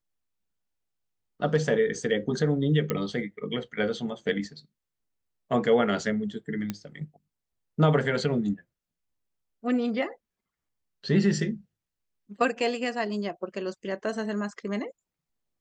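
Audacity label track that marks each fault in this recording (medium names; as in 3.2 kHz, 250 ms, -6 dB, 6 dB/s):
2.900000	2.900000	pop -13 dBFS
6.700000	6.700000	pop -16 dBFS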